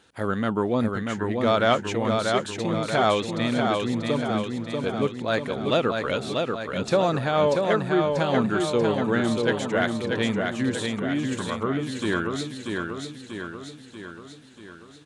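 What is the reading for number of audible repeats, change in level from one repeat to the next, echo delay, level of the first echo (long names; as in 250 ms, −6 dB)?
7, −5.0 dB, 638 ms, −4.0 dB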